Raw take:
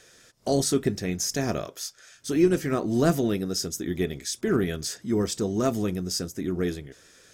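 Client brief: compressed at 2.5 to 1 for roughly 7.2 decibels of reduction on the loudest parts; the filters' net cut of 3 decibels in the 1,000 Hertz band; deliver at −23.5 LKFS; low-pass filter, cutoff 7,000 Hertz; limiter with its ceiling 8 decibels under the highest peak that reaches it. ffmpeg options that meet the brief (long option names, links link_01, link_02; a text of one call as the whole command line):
ffmpeg -i in.wav -af "lowpass=7000,equalizer=frequency=1000:width_type=o:gain=-5,acompressor=threshold=-27dB:ratio=2.5,volume=11dB,alimiter=limit=-14dB:level=0:latency=1" out.wav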